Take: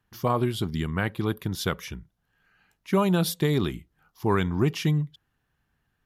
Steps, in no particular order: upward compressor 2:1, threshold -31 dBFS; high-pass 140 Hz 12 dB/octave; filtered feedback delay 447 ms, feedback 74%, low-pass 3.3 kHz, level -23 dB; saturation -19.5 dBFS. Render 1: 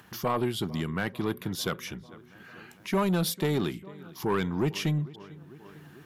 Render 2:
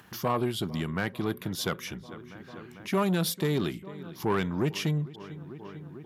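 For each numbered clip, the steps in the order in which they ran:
high-pass > upward compressor > filtered feedback delay > saturation; filtered feedback delay > saturation > high-pass > upward compressor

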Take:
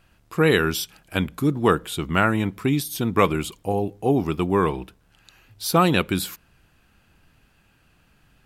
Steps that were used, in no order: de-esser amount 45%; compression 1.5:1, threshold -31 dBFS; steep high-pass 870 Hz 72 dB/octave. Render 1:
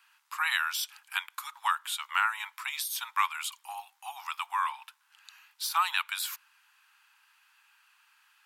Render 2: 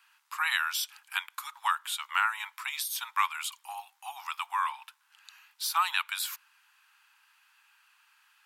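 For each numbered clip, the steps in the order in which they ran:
steep high-pass > de-esser > compression; steep high-pass > compression > de-esser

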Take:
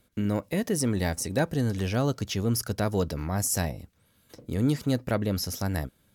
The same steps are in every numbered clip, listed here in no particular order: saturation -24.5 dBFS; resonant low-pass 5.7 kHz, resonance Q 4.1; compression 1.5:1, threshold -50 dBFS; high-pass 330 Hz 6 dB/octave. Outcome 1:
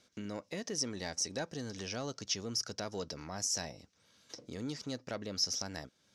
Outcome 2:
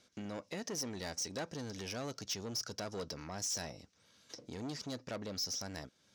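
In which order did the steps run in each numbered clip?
compression > high-pass > saturation > resonant low-pass; resonant low-pass > saturation > compression > high-pass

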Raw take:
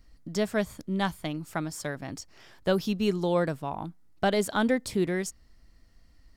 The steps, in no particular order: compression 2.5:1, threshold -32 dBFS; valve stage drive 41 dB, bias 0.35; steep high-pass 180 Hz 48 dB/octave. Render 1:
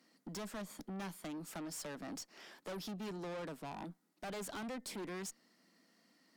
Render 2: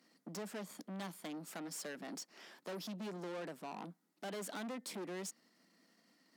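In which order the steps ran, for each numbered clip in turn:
compression > steep high-pass > valve stage; compression > valve stage > steep high-pass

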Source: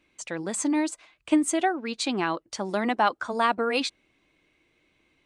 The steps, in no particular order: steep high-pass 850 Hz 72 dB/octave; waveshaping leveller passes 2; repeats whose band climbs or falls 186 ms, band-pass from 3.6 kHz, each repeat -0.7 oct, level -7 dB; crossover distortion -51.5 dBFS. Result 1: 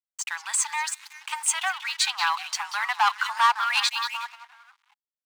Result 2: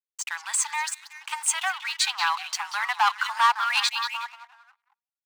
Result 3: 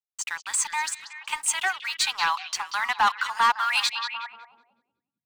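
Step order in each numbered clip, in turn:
repeats whose band climbs or falls > waveshaping leveller > crossover distortion > steep high-pass; crossover distortion > repeats whose band climbs or falls > waveshaping leveller > steep high-pass; steep high-pass > waveshaping leveller > crossover distortion > repeats whose band climbs or falls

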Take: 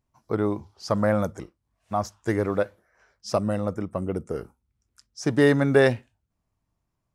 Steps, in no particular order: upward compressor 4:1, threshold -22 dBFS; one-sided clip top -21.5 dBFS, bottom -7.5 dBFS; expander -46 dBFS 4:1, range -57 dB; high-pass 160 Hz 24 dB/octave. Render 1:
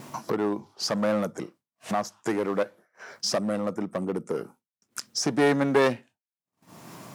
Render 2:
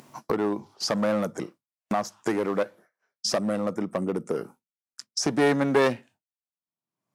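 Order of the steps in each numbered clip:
upward compressor > one-sided clip > high-pass > expander; expander > one-sided clip > high-pass > upward compressor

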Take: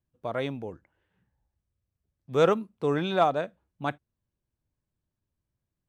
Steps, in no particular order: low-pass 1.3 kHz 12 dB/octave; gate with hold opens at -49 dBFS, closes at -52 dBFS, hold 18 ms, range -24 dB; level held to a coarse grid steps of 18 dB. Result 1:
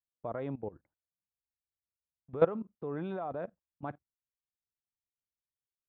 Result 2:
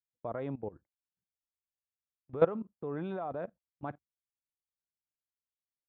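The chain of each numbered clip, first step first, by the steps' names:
gate with hold > level held to a coarse grid > low-pass; level held to a coarse grid > low-pass > gate with hold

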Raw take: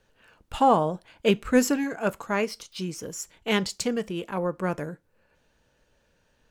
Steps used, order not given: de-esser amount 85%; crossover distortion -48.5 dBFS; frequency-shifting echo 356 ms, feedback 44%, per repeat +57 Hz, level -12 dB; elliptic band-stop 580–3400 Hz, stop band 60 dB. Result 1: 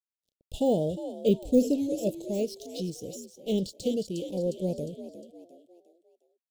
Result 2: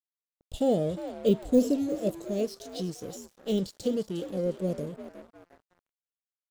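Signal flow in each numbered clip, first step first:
crossover distortion > frequency-shifting echo > de-esser > elliptic band-stop; de-esser > elliptic band-stop > frequency-shifting echo > crossover distortion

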